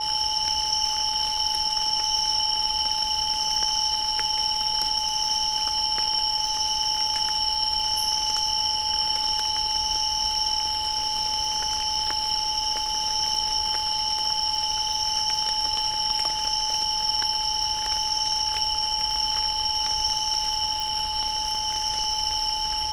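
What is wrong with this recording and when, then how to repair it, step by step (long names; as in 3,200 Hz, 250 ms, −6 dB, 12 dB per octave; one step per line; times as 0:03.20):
surface crackle 56 per second −32 dBFS
whistle 860 Hz −29 dBFS
0:20.80: click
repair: click removal
notch filter 860 Hz, Q 30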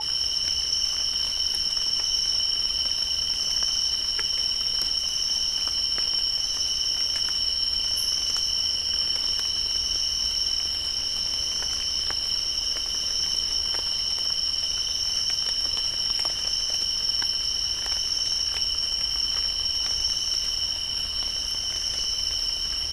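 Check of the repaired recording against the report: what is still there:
none of them is left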